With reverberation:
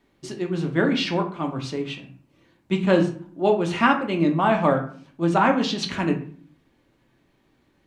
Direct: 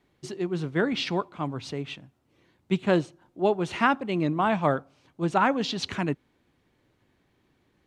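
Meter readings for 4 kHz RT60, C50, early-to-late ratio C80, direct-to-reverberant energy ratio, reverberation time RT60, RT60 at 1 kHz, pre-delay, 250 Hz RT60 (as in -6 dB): 0.30 s, 10.0 dB, 14.5 dB, 2.5 dB, 0.45 s, 0.45 s, 3 ms, 0.75 s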